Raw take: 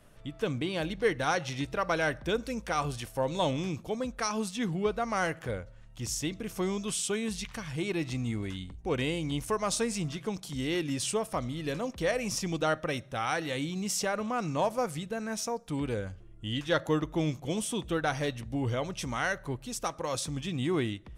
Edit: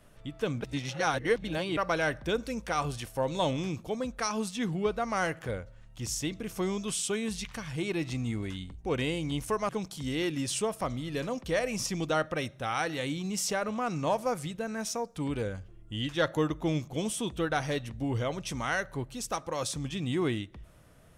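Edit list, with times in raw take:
0.61–1.77 reverse
9.69–10.21 cut

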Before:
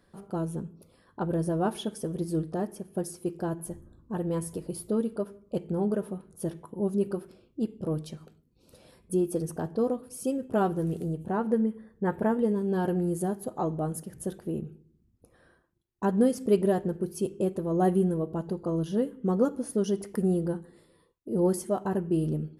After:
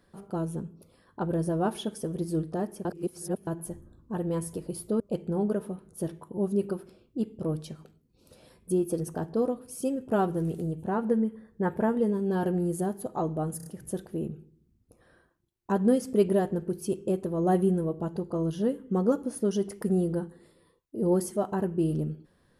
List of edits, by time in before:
2.85–3.47 reverse
5–5.42 cut
13.99 stutter 0.03 s, 4 plays

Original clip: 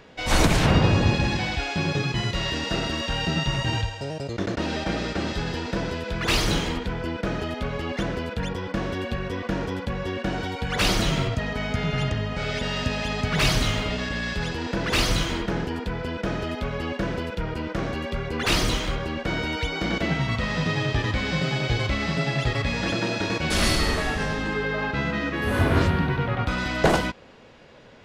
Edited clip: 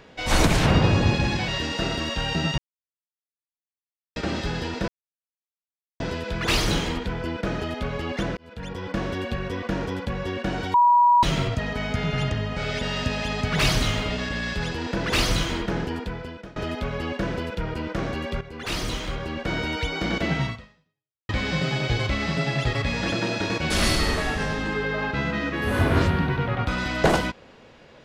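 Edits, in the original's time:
1.48–2.4 cut
3.5–5.08 mute
5.8 insert silence 1.12 s
8.17–8.73 fade in
10.54–11.03 bleep 966 Hz -13 dBFS
15.74–16.36 fade out, to -23.5 dB
18.21–19.36 fade in, from -12 dB
20.26–21.09 fade out exponential

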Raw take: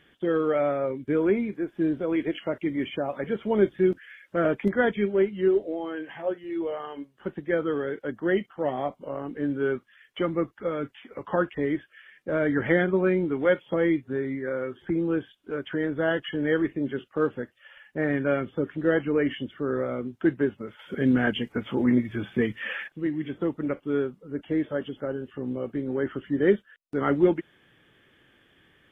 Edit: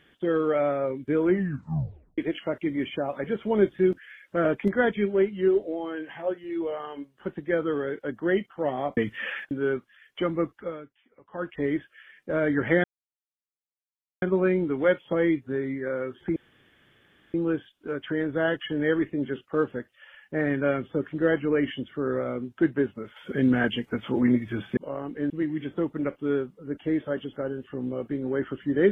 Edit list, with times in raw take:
1.25 tape stop 0.93 s
8.97–9.5 swap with 22.4–22.94
10.53–11.62 dip -18 dB, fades 0.32 s
12.83 insert silence 1.38 s
14.97 insert room tone 0.98 s

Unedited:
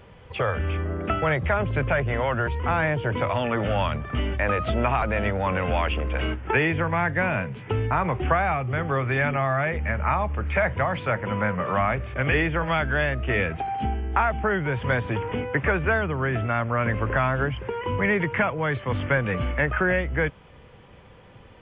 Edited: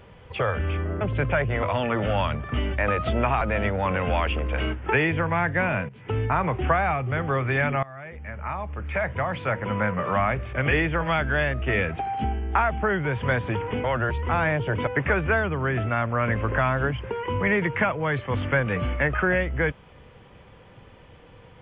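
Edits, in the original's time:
1.01–1.59 cut
2.21–3.24 move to 15.45
7.5–7.8 fade in, from -16 dB
9.44–11.34 fade in, from -21 dB

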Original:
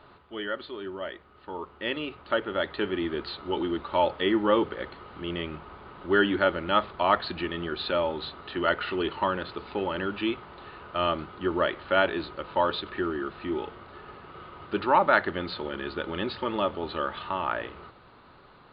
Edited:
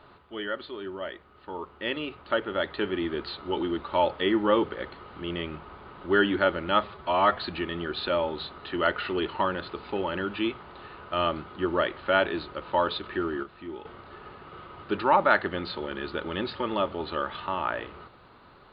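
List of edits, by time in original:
6.84–7.19 stretch 1.5×
13.26–13.68 gain -8 dB

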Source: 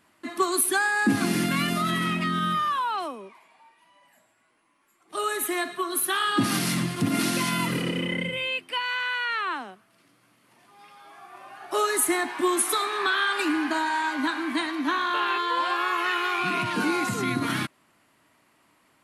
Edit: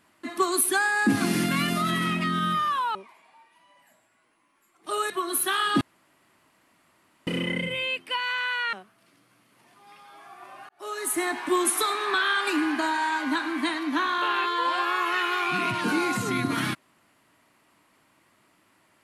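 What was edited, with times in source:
2.95–3.21 cut
5.36–5.72 cut
6.43–7.89 room tone
9.35–9.65 cut
11.61–12.31 fade in

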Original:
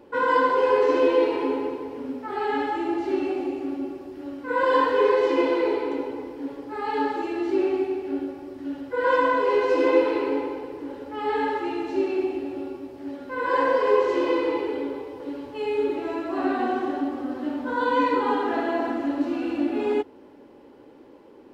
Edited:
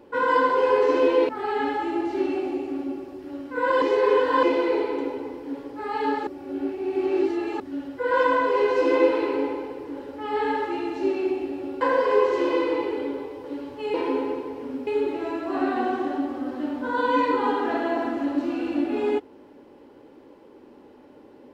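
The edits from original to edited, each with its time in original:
1.29–2.22 move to 15.7
4.75–5.36 reverse
7.2–8.53 reverse
12.74–13.57 cut

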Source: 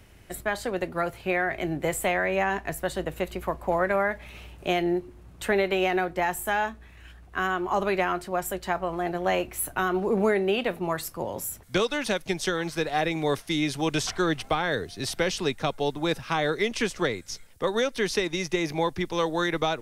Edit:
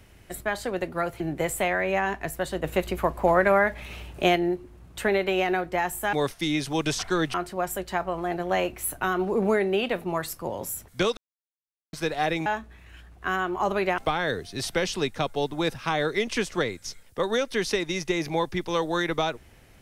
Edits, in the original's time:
1.2–1.64 cut
3.08–4.8 gain +4.5 dB
6.57–8.09 swap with 13.21–14.42
11.92–12.68 mute

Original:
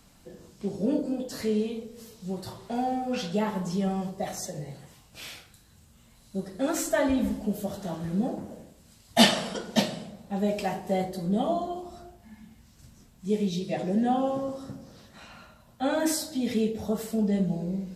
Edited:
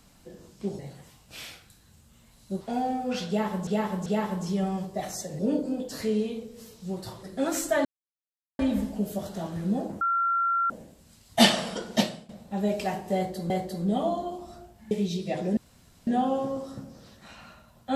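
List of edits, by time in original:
0.79–2.63 swap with 4.63–6.45
3.3–3.69 loop, 3 plays
7.07 insert silence 0.74 s
8.49 add tone 1370 Hz -22 dBFS 0.69 s
9.79–10.08 fade out, to -16.5 dB
10.94–11.29 loop, 2 plays
12.35–13.33 cut
13.99 insert room tone 0.50 s

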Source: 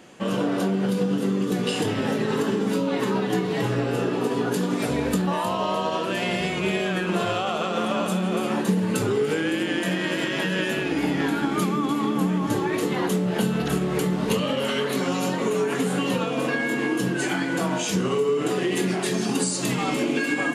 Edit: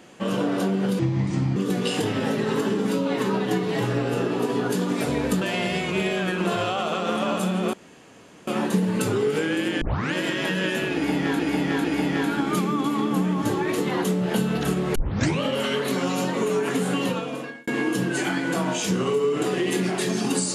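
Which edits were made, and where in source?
0.99–1.38 speed 68%
5.23–6.1 cut
8.42 insert room tone 0.74 s
9.76 tape start 0.32 s
10.89–11.34 loop, 3 plays
14 tape start 0.46 s
16.06–16.72 fade out

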